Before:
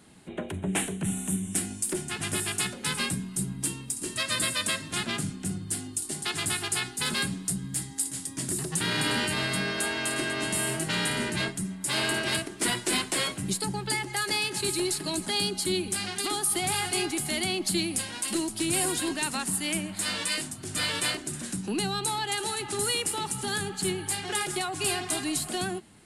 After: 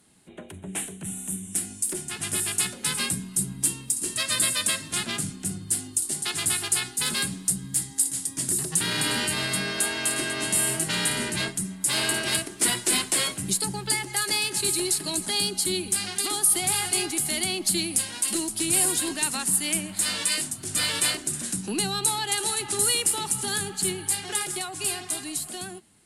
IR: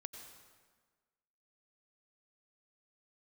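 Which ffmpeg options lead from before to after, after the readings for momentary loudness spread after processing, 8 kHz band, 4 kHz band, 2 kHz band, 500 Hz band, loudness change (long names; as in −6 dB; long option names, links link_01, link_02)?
7 LU, +6.5 dB, +2.5 dB, +0.5 dB, −1.0 dB, +4.0 dB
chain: -af "aemphasis=mode=production:type=cd,dynaudnorm=framelen=380:gausssize=11:maxgain=11.5dB,volume=-7.5dB"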